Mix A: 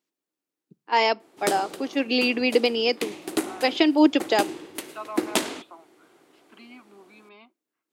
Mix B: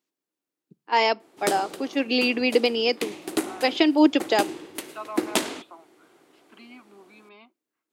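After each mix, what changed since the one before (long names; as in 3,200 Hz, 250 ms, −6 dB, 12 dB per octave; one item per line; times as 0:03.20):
nothing changed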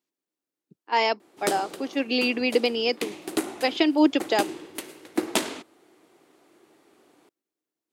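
second voice: muted
reverb: off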